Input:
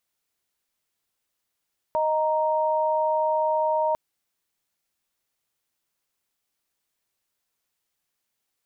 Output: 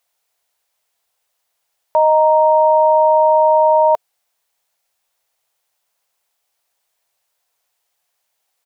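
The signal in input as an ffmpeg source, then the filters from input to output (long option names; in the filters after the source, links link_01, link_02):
-f lavfi -i "aevalsrc='0.0708*(sin(2*PI*622.25*t)+sin(2*PI*932.33*t))':duration=2:sample_rate=44100"
-af "firequalizer=gain_entry='entry(130,0);entry(280,-7);entry(450,7);entry(700,14);entry(1200,8)':delay=0.05:min_phase=1"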